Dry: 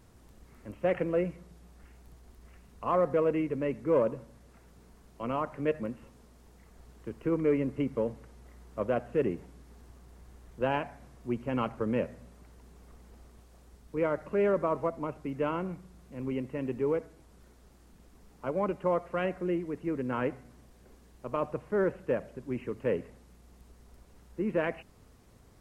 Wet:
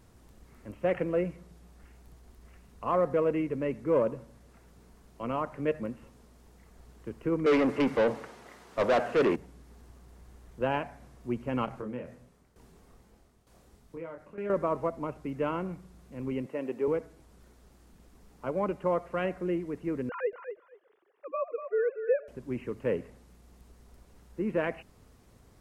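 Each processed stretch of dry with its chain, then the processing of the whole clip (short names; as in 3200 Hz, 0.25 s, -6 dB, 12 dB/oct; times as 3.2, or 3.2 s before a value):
7.46–9.36 HPF 130 Hz 6 dB/oct + overdrive pedal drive 26 dB, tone 2900 Hz, clips at -16.5 dBFS + three-band expander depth 40%
11.65–14.5 compressor, threshold -33 dBFS + doubler 24 ms -4 dB + tremolo saw down 1.1 Hz, depth 75%
16.46–16.88 HPF 270 Hz + bell 620 Hz +4.5 dB 0.9 oct
20.09–22.28 sine-wave speech + feedback echo 0.24 s, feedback 16%, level -9 dB
whole clip: dry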